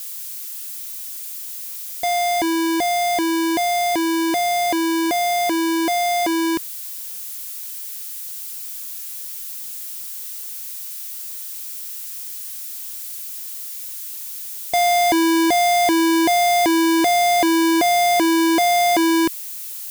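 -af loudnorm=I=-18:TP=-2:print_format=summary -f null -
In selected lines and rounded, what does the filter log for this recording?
Input Integrated:    -19.6 LUFS
Input True Peak:     -12.8 dBTP
Input LRA:            12.8 LU
Input Threshold:     -29.6 LUFS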